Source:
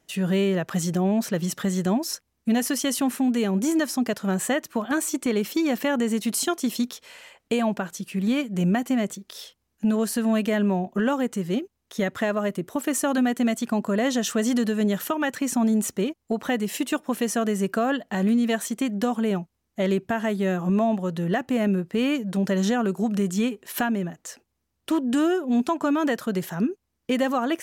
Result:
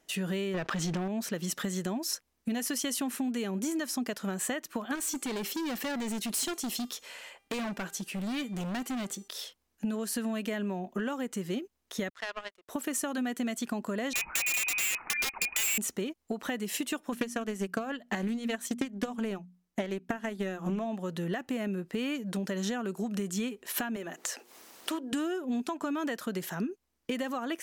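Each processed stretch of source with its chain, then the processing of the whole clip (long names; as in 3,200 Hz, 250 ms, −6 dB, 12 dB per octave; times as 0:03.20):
0:00.54–0:01.08: low-pass filter 4,600 Hz + leveller curve on the samples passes 2 + envelope flattener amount 50%
0:04.95–0:09.28: hard clipping −26.5 dBFS + hum removal 398.4 Hz, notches 38
0:12.09–0:12.69: band-pass filter 730–5,200 Hz + power curve on the samples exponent 2
0:14.13–0:15.78: voice inversion scrambler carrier 2,700 Hz + wrap-around overflow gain 18.5 dB
0:17.12–0:20.86: transient designer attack +11 dB, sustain −6 dB + mains-hum notches 60/120/180/240 Hz + highs frequency-modulated by the lows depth 0.18 ms
0:23.96–0:25.13: high-pass filter 360 Hz + upward compression, threshold −27 dBFS + mains-hum notches 60/120/180/240/300/360/420/480 Hz
whole clip: parametric band 110 Hz −12 dB 1.3 octaves; downward compressor, threshold −28 dBFS; dynamic equaliser 680 Hz, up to −4 dB, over −43 dBFS, Q 0.74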